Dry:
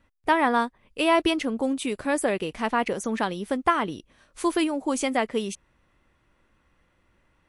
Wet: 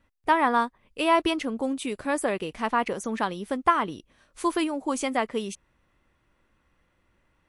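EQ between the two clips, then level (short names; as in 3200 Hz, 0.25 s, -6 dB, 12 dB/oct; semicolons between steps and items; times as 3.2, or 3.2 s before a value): dynamic EQ 1100 Hz, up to +5 dB, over -37 dBFS, Q 2.2; -2.5 dB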